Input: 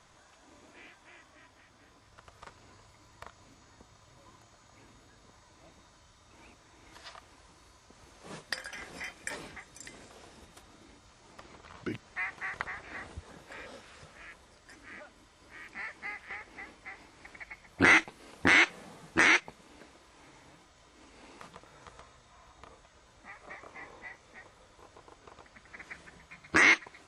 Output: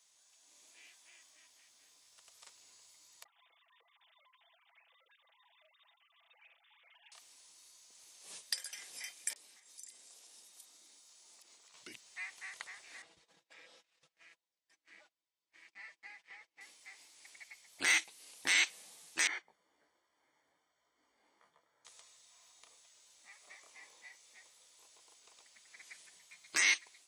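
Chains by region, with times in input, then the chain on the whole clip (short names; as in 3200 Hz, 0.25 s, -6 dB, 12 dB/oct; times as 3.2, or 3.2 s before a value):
3.24–7.12 sine-wave speech + comb 6 ms, depth 89% + compressor 10:1, threshold -51 dBFS
9.33–11.74 HPF 180 Hz 24 dB/oct + compressor 10:1, threshold -51 dBFS + bands offset in time lows, highs 30 ms, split 2500 Hz
13.02–16.61 gate -52 dBFS, range -24 dB + tape spacing loss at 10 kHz 21 dB + comb 6.1 ms, depth 62%
19.27–21.85 polynomial smoothing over 41 samples + detuned doubles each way 20 cents
whole clip: differentiator; AGC gain up to 6 dB; bell 1400 Hz -8 dB 0.99 oct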